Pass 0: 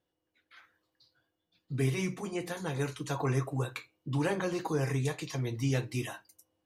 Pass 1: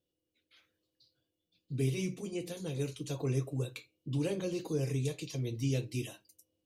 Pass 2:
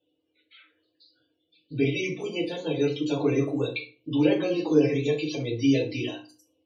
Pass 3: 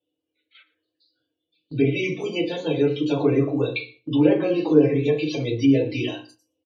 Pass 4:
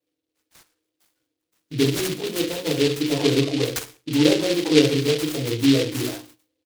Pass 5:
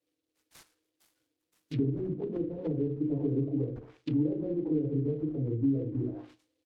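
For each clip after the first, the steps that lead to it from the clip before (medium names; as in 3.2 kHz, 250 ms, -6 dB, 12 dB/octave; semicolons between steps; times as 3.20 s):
high-order bell 1.2 kHz -14 dB; trim -2 dB
three-band isolator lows -14 dB, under 340 Hz, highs -14 dB, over 5.1 kHz; loudest bins only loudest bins 64; FDN reverb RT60 0.34 s, low-frequency decay 1.4×, high-frequency decay 0.8×, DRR -3.5 dB; trim +9 dB
low-pass that closes with the level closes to 1.8 kHz, closed at -19.5 dBFS; gate -52 dBFS, range -11 dB; delay 117 ms -21 dB; trim +4.5 dB
delay time shaken by noise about 3.2 kHz, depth 0.14 ms
compression 10:1, threshold -18 dBFS, peak gain reduction 9.5 dB; low-pass that closes with the level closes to 300 Hz, closed at -23.5 dBFS; trim -2.5 dB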